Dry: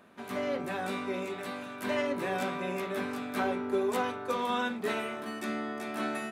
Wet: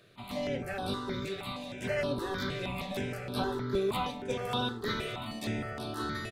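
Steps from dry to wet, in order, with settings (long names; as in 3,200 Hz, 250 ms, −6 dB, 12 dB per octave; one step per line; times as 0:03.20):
sub-octave generator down 1 octave, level −2 dB
parametric band 4,100 Hz +9.5 dB 0.72 octaves
repeating echo 580 ms, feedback 39%, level −11.5 dB
step-sequenced phaser 6.4 Hz 240–6,900 Hz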